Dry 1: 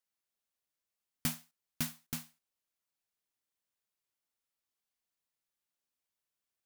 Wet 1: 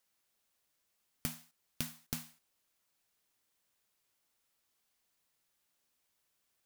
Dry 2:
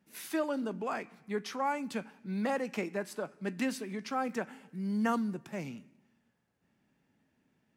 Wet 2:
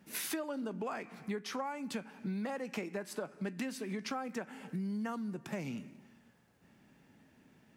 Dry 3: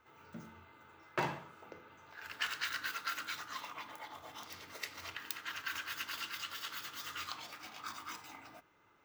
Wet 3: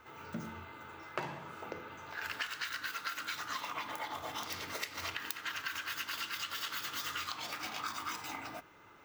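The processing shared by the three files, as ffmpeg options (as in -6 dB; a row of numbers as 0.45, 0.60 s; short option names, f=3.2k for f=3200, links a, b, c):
-af "acompressor=threshold=-45dB:ratio=16,volume=10dB"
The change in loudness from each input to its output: -3.0, -4.0, +2.0 LU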